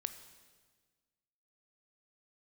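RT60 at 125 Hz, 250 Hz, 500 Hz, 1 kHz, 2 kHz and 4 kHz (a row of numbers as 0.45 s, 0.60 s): 1.7 s, 1.8 s, 1.6 s, 1.4 s, 1.4 s, 1.4 s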